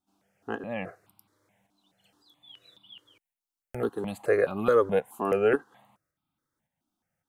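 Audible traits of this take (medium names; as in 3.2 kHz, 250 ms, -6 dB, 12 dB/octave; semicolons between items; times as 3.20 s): tremolo saw up 1.8 Hz, depth 45%; notches that jump at a steady rate 4.7 Hz 510–1800 Hz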